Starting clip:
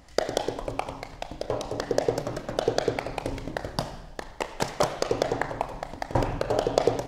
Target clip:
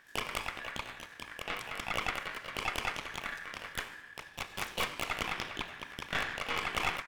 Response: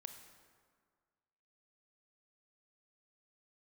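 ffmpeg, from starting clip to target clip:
-filter_complex "[0:a]asplit=3[link_01][link_02][link_03];[link_02]asetrate=29433,aresample=44100,atempo=1.49831,volume=-6dB[link_04];[link_03]asetrate=88200,aresample=44100,atempo=0.5,volume=0dB[link_05];[link_01][link_04][link_05]amix=inputs=3:normalize=0,aeval=exprs='val(0)*sin(2*PI*1700*n/s)':channel_layout=same,aeval=exprs='(tanh(7.94*val(0)+0.75)-tanh(0.75))/7.94':channel_layout=same,volume=-5dB"

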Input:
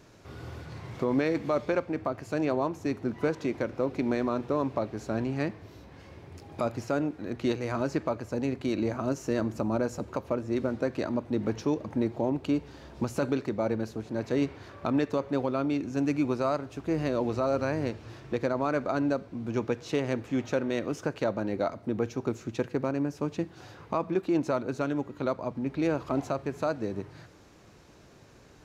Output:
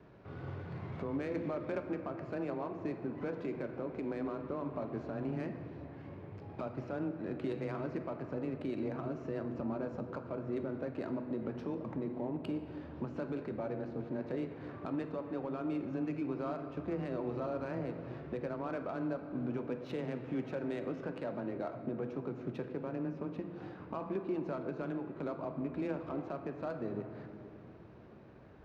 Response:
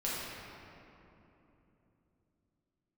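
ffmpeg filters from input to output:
-filter_complex "[0:a]lowpass=4900,bandreject=frequency=166:width_type=h:width=4,bandreject=frequency=332:width_type=h:width=4,bandreject=frequency=498:width_type=h:width=4,bandreject=frequency=664:width_type=h:width=4,bandreject=frequency=830:width_type=h:width=4,bandreject=frequency=996:width_type=h:width=4,bandreject=frequency=1162:width_type=h:width=4,bandreject=frequency=1328:width_type=h:width=4,bandreject=frequency=1494:width_type=h:width=4,bandreject=frequency=1660:width_type=h:width=4,bandreject=frequency=1826:width_type=h:width=4,bandreject=frequency=1992:width_type=h:width=4,bandreject=frequency=2158:width_type=h:width=4,bandreject=frequency=2324:width_type=h:width=4,bandreject=frequency=2490:width_type=h:width=4,bandreject=frequency=2656:width_type=h:width=4,bandreject=frequency=2822:width_type=h:width=4,bandreject=frequency=2988:width_type=h:width=4,bandreject=frequency=3154:width_type=h:width=4,bandreject=frequency=3320:width_type=h:width=4,bandreject=frequency=3486:width_type=h:width=4,bandreject=frequency=3652:width_type=h:width=4,bandreject=frequency=3818:width_type=h:width=4,bandreject=frequency=3984:width_type=h:width=4,bandreject=frequency=4150:width_type=h:width=4,bandreject=frequency=4316:width_type=h:width=4,bandreject=frequency=4482:width_type=h:width=4,bandreject=frequency=4648:width_type=h:width=4,bandreject=frequency=4814:width_type=h:width=4,bandreject=frequency=4980:width_type=h:width=4,bandreject=frequency=5146:width_type=h:width=4,bandreject=frequency=5312:width_type=h:width=4,bandreject=frequency=5478:width_type=h:width=4,alimiter=level_in=2.5dB:limit=-24dB:level=0:latency=1:release=199,volume=-2.5dB,afreqshift=14,adynamicsmooth=sensitivity=8:basefreq=2100,asplit=2[link_01][link_02];[1:a]atrim=start_sample=2205[link_03];[link_02][link_03]afir=irnorm=-1:irlink=0,volume=-10.5dB[link_04];[link_01][link_04]amix=inputs=2:normalize=0,volume=-3.5dB"

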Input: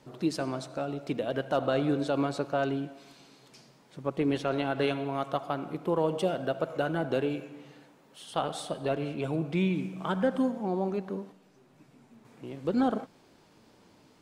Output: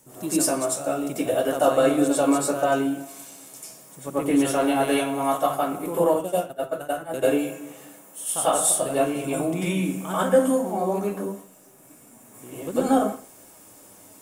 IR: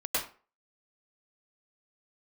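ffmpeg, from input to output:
-filter_complex "[0:a]asettb=1/sr,asplit=3[link_01][link_02][link_03];[link_01]atrim=end=6.044[link_04];[link_02]atrim=start=6.04:end=7.14,asetpts=PTS-STARTPTS,afade=type=in:duration=0.004:curve=qsin,afade=type=out:start_time=1.096:duration=0.004:curve=qsin,agate=range=-23dB:threshold=-26dB:ratio=16:detection=peak[link_05];[link_03]atrim=start=7.136[link_06];[link_04][link_05]acrossfade=duration=0.004:curve1=hsin:curve2=qsin[link_07];[link_07][link_06]acrossfade=duration=0.004:curve1=qsin:curve2=hsin,aexciter=amount=9.7:drive=8.1:freq=6700[link_08];[1:a]atrim=start_sample=2205,asetrate=48510,aresample=44100[link_09];[link_08][link_09]afir=irnorm=-1:irlink=0"

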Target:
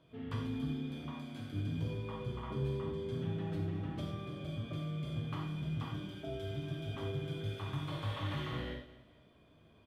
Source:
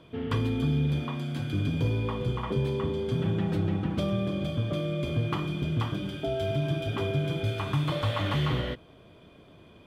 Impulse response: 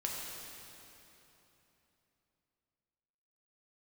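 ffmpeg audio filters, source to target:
-filter_complex "[0:a]aecho=1:1:215|430|645:0.141|0.0523|0.0193[link_01];[1:a]atrim=start_sample=2205,afade=type=out:start_time=0.26:duration=0.01,atrim=end_sample=11907,asetrate=79380,aresample=44100[link_02];[link_01][link_02]afir=irnorm=-1:irlink=0,volume=-7dB"

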